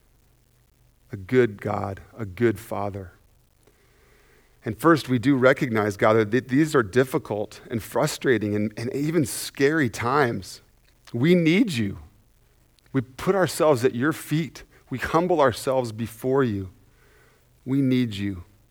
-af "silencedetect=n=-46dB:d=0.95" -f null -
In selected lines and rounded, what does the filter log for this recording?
silence_start: 0.00
silence_end: 1.10 | silence_duration: 1.10